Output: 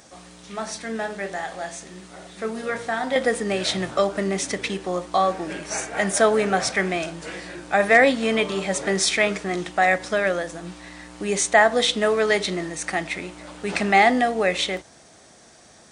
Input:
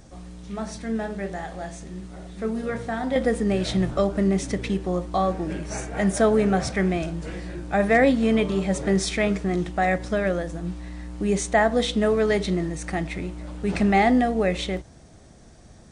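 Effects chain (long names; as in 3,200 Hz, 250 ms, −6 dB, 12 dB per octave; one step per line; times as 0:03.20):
high-pass filter 900 Hz 6 dB per octave
level +7.5 dB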